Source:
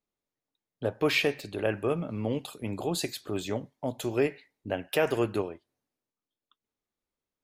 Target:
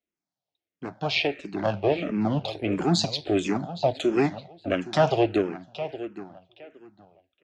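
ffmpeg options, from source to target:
ffmpeg -i in.wav -filter_complex "[0:a]asettb=1/sr,asplit=3[link_01][link_02][link_03];[link_01]atrim=end=1.274[link_04];[link_02]atrim=start=1.27:end=2.48,asetpts=PTS-STARTPTS,afade=type=in:duration=0.004:curve=qsin,afade=type=out:start_time=1.206:duration=0.004:curve=qsin,highshelf=frequency=4800:gain=-8.5[link_05];[link_03]atrim=start=2.476[link_06];[link_04][link_05]acrossfade=duration=0.004:curve1=hsin:curve2=qsin[link_07];[link_07][link_06]acrossfade=duration=0.004:curve1=qsin:curve2=hsin,asplit=2[link_08][link_09];[link_09]alimiter=limit=-23.5dB:level=0:latency=1:release=239,volume=-2dB[link_10];[link_08][link_10]amix=inputs=2:normalize=0,dynaudnorm=framelen=270:gausssize=11:maxgain=11.5dB,acrossover=split=430|1900[link_11][link_12][link_13];[link_12]aeval=exprs='max(val(0),0)':channel_layout=same[link_14];[link_13]tremolo=f=160:d=0.667[link_15];[link_11][link_14][link_15]amix=inputs=3:normalize=0,highpass=100,equalizer=frequency=120:width_type=q:width=4:gain=-7,equalizer=frequency=240:width_type=q:width=4:gain=-7,equalizer=frequency=450:width_type=q:width=4:gain=-6,equalizer=frequency=700:width_type=q:width=4:gain=8,equalizer=frequency=1100:width_type=q:width=4:gain=-6,equalizer=frequency=1700:width_type=q:width=4:gain=-3,lowpass=frequency=6100:width=0.5412,lowpass=frequency=6100:width=1.3066,asplit=2[link_16][link_17];[link_17]adelay=816,lowpass=frequency=4400:poles=1,volume=-13.5dB,asplit=2[link_18][link_19];[link_19]adelay=816,lowpass=frequency=4400:poles=1,volume=0.22,asplit=2[link_20][link_21];[link_21]adelay=816,lowpass=frequency=4400:poles=1,volume=0.22[link_22];[link_16][link_18][link_20][link_22]amix=inputs=4:normalize=0,asplit=2[link_23][link_24];[link_24]afreqshift=-1.5[link_25];[link_23][link_25]amix=inputs=2:normalize=1,volume=1dB" out.wav

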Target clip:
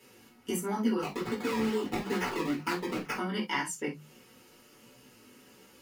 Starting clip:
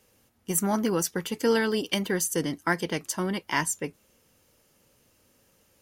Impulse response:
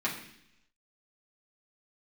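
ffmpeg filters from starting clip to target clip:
-filter_complex "[0:a]bandreject=frequency=50:width_type=h:width=6,bandreject=frequency=100:width_type=h:width=6,bandreject=frequency=150:width_type=h:width=6,bandreject=frequency=200:width_type=h:width=6,acompressor=threshold=-39dB:ratio=6,asettb=1/sr,asplit=3[link_01][link_02][link_03];[link_01]atrim=end=1.014[link_04];[link_02]atrim=start=1.01:end=3.15,asetpts=PTS-STARTPTS,afade=type=in:duration=0.004:curve=qsin,afade=type=out:start_time=2.136:duration=0.004:curve=qsin,acrusher=samples=21:mix=1:aa=0.000001:lfo=1:lforange=21:lforate=2.3[link_05];[link_03]atrim=start=3.146[link_06];[link_04][link_05]acrossfade=duration=0.004:curve1=hsin:curve2=qsin[link_07];[link_07][link_06]acrossfade=duration=0.004:curve1=qsin:curve2=hsin,flanger=delay=15:depth=5.4:speed=1.4[link_08];[1:a]atrim=start_sample=2205,atrim=end_sample=3969,asetrate=52920,aresample=44100[link_09];[link_08][link_09]afir=irnorm=-1:irlink=0,volume=7dB"

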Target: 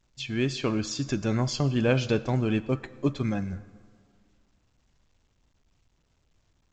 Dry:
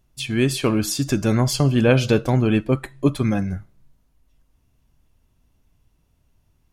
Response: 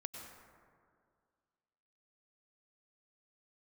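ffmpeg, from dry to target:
-filter_complex "[0:a]asplit=2[link_01][link_02];[link_02]lowshelf=frequency=220:gain=-4[link_03];[1:a]atrim=start_sample=2205,lowpass=6600,highshelf=frequency=2100:gain=7[link_04];[link_03][link_04]afir=irnorm=-1:irlink=0,volume=-12dB[link_05];[link_01][link_05]amix=inputs=2:normalize=0,volume=-8.5dB" -ar 16000 -c:a pcm_alaw

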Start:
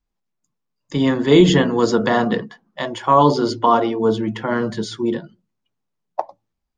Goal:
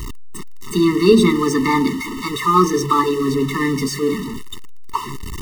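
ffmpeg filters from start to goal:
ffmpeg -i in.wav -af "aeval=exprs='val(0)+0.5*0.0841*sgn(val(0))':channel_layout=same,asetrate=55125,aresample=44100,afftfilt=real='re*eq(mod(floor(b*sr/1024/440),2),0)':imag='im*eq(mod(floor(b*sr/1024/440),2),0)':win_size=1024:overlap=0.75,volume=1.5dB" out.wav

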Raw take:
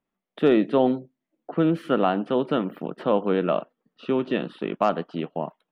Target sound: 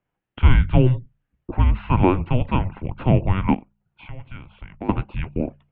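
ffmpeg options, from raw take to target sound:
ffmpeg -i in.wav -filter_complex "[0:a]bandreject=frequency=58.92:width_type=h:width=4,bandreject=frequency=117.84:width_type=h:width=4,bandreject=frequency=176.76:width_type=h:width=4,bandreject=frequency=235.68:width_type=h:width=4,bandreject=frequency=294.6:width_type=h:width=4,bandreject=frequency=353.52:width_type=h:width=4,asettb=1/sr,asplit=3[link_01][link_02][link_03];[link_01]atrim=end=3.544[link_04];[link_02]atrim=start=3.54:end=4.89,asetpts=PTS-STARTPTS,afade=type=in:duration=0.004:curve=qsin,afade=type=out:start_time=1.346:duration=0.004:curve=qsin,acompressor=threshold=-49dB:ratio=2[link_05];[link_03]atrim=start=4.886[link_06];[link_04][link_05]acrossfade=duration=0.004:curve1=hsin:curve2=qsin[link_07];[link_07][link_06]acrossfade=duration=0.004:curve1=qsin:curve2=hsin,highpass=frequency=250:width_type=q:width=0.5412,highpass=frequency=250:width_type=q:width=1.307,lowpass=frequency=3600:width_type=q:width=0.5176,lowpass=frequency=3600:width_type=q:width=0.7071,lowpass=frequency=3600:width_type=q:width=1.932,afreqshift=-380,volume=6dB" out.wav

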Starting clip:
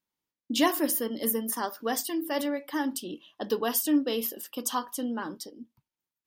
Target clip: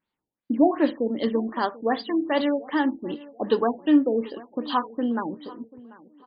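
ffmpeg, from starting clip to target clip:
ffmpeg -i in.wav -filter_complex "[0:a]asplit=2[link_01][link_02];[link_02]adelay=739,lowpass=frequency=2900:poles=1,volume=-20.5dB,asplit=2[link_03][link_04];[link_04]adelay=739,lowpass=frequency=2900:poles=1,volume=0.35,asplit=2[link_05][link_06];[link_06]adelay=739,lowpass=frequency=2900:poles=1,volume=0.35[link_07];[link_03][link_05][link_07]amix=inputs=3:normalize=0[link_08];[link_01][link_08]amix=inputs=2:normalize=0,afftfilt=real='re*lt(b*sr/1024,850*pow(5000/850,0.5+0.5*sin(2*PI*2.6*pts/sr)))':imag='im*lt(b*sr/1024,850*pow(5000/850,0.5+0.5*sin(2*PI*2.6*pts/sr)))':win_size=1024:overlap=0.75,volume=6.5dB" out.wav

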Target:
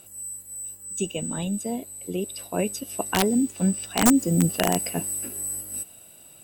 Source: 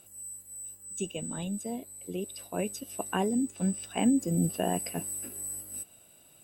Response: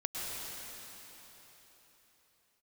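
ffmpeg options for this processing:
-filter_complex "[0:a]aeval=exprs='(mod(7.08*val(0)+1,2)-1)/7.08':channel_layout=same,asplit=2[link_01][link_02];[link_02]aderivative[link_03];[1:a]atrim=start_sample=2205,asetrate=41013,aresample=44100[link_04];[link_03][link_04]afir=irnorm=-1:irlink=0,volume=-21.5dB[link_05];[link_01][link_05]amix=inputs=2:normalize=0,volume=6.5dB"

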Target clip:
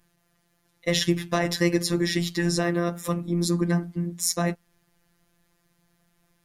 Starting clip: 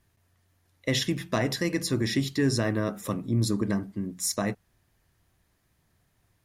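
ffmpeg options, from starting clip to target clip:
ffmpeg -i in.wav -af "afftfilt=real='hypot(re,im)*cos(PI*b)':imag='0':win_size=1024:overlap=0.75,volume=6.5dB" out.wav

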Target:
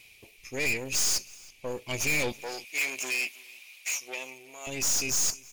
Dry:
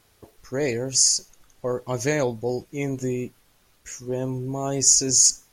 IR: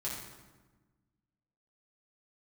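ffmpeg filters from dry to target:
-filter_complex "[0:a]highshelf=frequency=1900:width_type=q:width=3:gain=8.5,dynaudnorm=framelen=250:gausssize=9:maxgain=8dB,equalizer=frequency=2400:width_type=o:width=0.32:gain=12.5,aeval=exprs='(tanh(17.8*val(0)+0.7)-tanh(0.7))/17.8':channel_layout=same,asettb=1/sr,asplit=3[link_01][link_02][link_03];[link_01]atrim=end=2.324[link_04];[link_02]atrim=start=2.32:end=4.67,asetpts=PTS-STARTPTS,afade=type=in:duration=0.004:curve=qsin,afade=type=out:start_time=2.346:duration=0.004:curve=qsin,highpass=700[link_05];[link_03]atrim=start=4.666[link_06];[link_04][link_05]acrossfade=duration=0.004:curve1=hsin:curve2=qsin[link_07];[link_07][link_06]acrossfade=duration=0.004:curve1=qsin:curve2=hsin,aecho=1:1:323:0.0631"

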